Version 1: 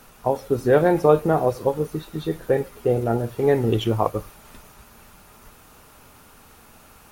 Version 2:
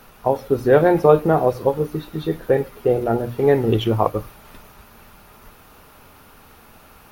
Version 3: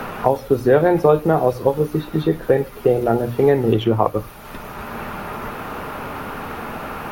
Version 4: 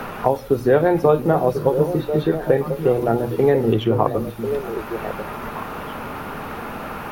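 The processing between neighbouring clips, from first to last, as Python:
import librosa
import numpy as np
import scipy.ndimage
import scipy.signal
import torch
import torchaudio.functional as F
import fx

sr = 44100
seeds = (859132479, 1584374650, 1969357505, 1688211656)

y1 = fx.peak_eq(x, sr, hz=7800.0, db=-9.0, octaves=0.85)
y1 = fx.hum_notches(y1, sr, base_hz=60, count=5)
y1 = y1 * librosa.db_to_amplitude(3.0)
y2 = fx.band_squash(y1, sr, depth_pct=70)
y2 = y2 * librosa.db_to_amplitude(1.5)
y3 = fx.echo_stepped(y2, sr, ms=521, hz=180.0, octaves=1.4, feedback_pct=70, wet_db=-4.0)
y3 = y3 * librosa.db_to_amplitude(-1.5)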